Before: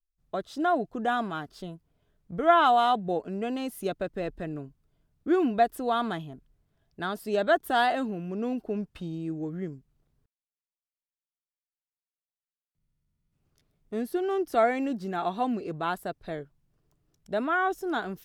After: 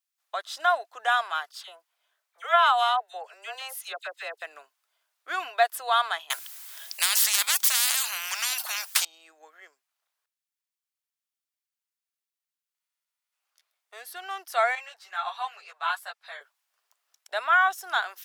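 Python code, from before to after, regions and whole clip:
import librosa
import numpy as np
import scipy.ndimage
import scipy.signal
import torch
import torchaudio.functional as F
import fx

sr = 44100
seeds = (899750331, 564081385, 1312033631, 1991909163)

y = fx.chain(x, sr, fx.highpass(hz=340.0, slope=24),
    fx.dispersion(late='lows', ms=57.0, hz=1900.0), at=(1.51, 4.42))
y = fx.chain(y, sr, fx.tilt_eq(slope=4.5),
    fx.spectral_comp(ratio=10.0), at=(6.3, 9.05))
y = fx.chain(y, sr, fx.highpass(hz=740.0, slope=12),
    fx.high_shelf(hz=8200.0, db=-6.5),
    fx.ensemble(), at=(14.75, 16.41))
y = scipy.signal.sosfilt(scipy.signal.bessel(6, 1200.0, 'highpass', norm='mag', fs=sr, output='sos'), y)
y = fx.rider(y, sr, range_db=5, speed_s=2.0)
y = F.gain(torch.from_numpy(y), 5.5).numpy()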